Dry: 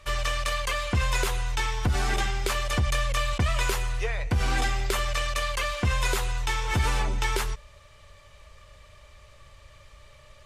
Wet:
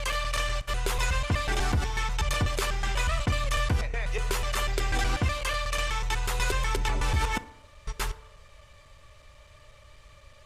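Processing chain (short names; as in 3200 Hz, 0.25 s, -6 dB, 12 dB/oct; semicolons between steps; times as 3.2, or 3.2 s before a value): slices in reverse order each 0.123 s, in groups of 6; FDN reverb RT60 0.81 s, low-frequency decay 0.9×, high-frequency decay 0.45×, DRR 13.5 dB; gain -1.5 dB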